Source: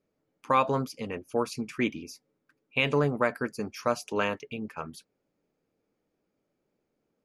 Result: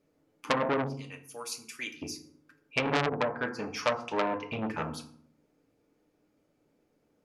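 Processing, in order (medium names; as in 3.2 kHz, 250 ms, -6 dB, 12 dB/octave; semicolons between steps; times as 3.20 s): 0.87–2.02 s: pre-emphasis filter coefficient 0.97; low-pass that closes with the level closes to 480 Hz, closed at -21.5 dBFS; 3.06–4.49 s: resonant low shelf 520 Hz -7.5 dB, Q 1.5; FDN reverb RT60 0.57 s, low-frequency decay 1.45×, high-frequency decay 0.65×, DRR 5 dB; transformer saturation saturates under 3.1 kHz; trim +5 dB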